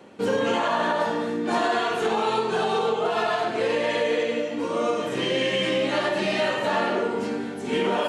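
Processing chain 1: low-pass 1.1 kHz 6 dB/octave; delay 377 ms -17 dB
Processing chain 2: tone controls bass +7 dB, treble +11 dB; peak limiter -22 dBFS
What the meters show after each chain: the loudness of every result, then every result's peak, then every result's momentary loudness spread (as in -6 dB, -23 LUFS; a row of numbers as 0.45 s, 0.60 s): -26.0 LUFS, -30.0 LUFS; -14.5 dBFS, -22.0 dBFS; 3 LU, 1 LU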